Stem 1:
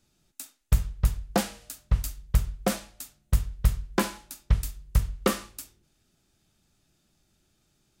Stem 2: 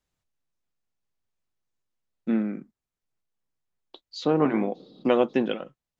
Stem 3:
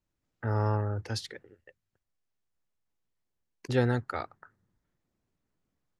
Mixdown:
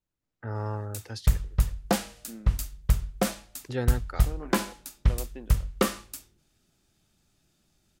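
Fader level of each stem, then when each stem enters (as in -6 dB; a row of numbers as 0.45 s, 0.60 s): 0.0 dB, -19.5 dB, -4.5 dB; 0.55 s, 0.00 s, 0.00 s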